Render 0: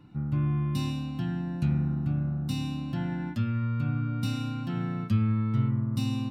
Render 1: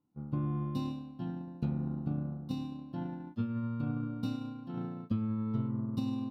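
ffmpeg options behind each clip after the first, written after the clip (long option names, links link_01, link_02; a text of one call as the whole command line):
ffmpeg -i in.wav -af "agate=range=-33dB:threshold=-20dB:ratio=3:detection=peak,equalizer=frequency=250:width_type=o:width=1:gain=9,equalizer=frequency=500:width_type=o:width=1:gain=8,equalizer=frequency=1000:width_type=o:width=1:gain=9,equalizer=frequency=2000:width_type=o:width=1:gain=-7,equalizer=frequency=4000:width_type=o:width=1:gain=5,equalizer=frequency=8000:width_type=o:width=1:gain=-7,acompressor=threshold=-29dB:ratio=12" out.wav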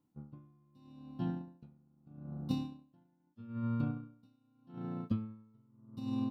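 ffmpeg -i in.wav -af "aeval=exprs='val(0)*pow(10,-36*(0.5-0.5*cos(2*PI*0.8*n/s))/20)':channel_layout=same,volume=2.5dB" out.wav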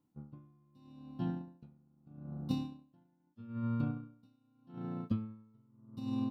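ffmpeg -i in.wav -af anull out.wav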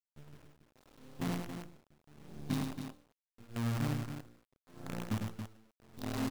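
ffmpeg -i in.wav -af "flanger=delay=17:depth=3.3:speed=2.2,acrusher=bits=7:dc=4:mix=0:aa=0.000001,aecho=1:1:102|277:0.562|0.398,volume=1dB" out.wav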